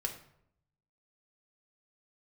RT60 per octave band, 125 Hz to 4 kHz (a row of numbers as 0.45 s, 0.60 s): 1.1 s, 0.85 s, 0.75 s, 0.65 s, 0.55 s, 0.45 s